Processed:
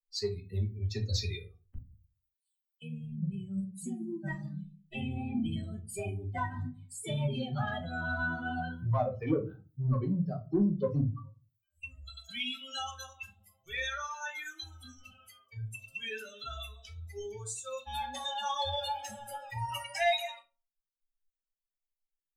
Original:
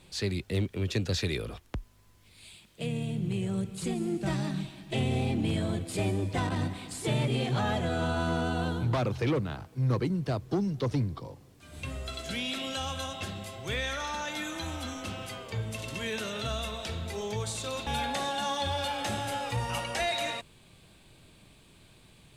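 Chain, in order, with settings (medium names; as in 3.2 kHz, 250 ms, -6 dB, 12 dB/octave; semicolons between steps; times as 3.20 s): expander on every frequency bin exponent 3; 1.76–2.82 s: inverse Chebyshev high-pass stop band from 1.5 kHz; in parallel at -6 dB: saturation -31 dBFS, distortion -13 dB; on the sum: reverberation RT60 0.30 s, pre-delay 5 ms, DRR 2 dB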